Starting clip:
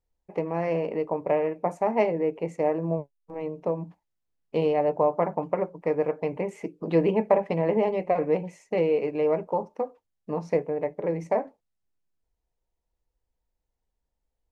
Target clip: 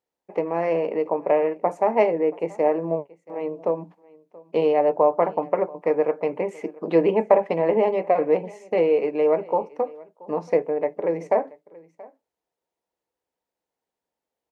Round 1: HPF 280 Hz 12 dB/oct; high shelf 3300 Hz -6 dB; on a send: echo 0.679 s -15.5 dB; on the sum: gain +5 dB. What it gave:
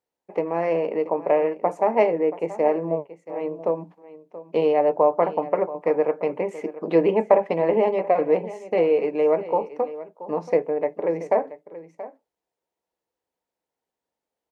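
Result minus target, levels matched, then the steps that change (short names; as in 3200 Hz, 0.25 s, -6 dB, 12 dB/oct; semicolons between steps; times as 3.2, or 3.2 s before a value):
echo-to-direct +7 dB
change: echo 0.679 s -22.5 dB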